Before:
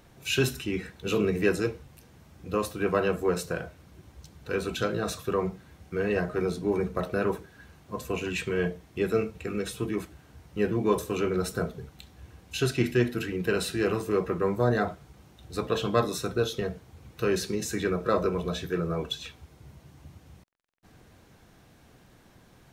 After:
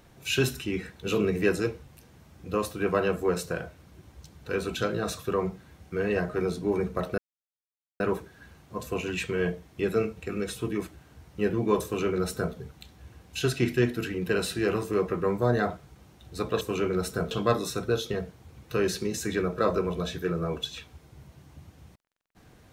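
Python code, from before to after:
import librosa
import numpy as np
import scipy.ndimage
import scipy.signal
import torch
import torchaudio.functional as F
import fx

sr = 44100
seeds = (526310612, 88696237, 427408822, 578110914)

y = fx.edit(x, sr, fx.insert_silence(at_s=7.18, length_s=0.82),
    fx.duplicate(start_s=11.02, length_s=0.7, to_s=15.79), tone=tone)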